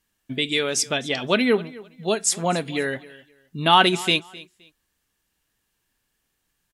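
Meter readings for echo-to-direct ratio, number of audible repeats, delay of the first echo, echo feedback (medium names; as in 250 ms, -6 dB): -20.5 dB, 2, 260 ms, 23%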